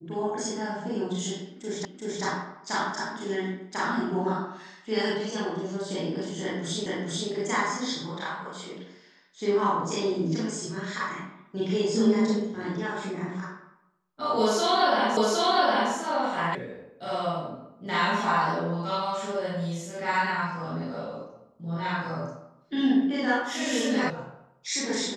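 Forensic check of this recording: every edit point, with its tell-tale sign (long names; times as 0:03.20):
0:01.85: the same again, the last 0.38 s
0:06.86: the same again, the last 0.44 s
0:15.17: the same again, the last 0.76 s
0:16.55: cut off before it has died away
0:24.10: cut off before it has died away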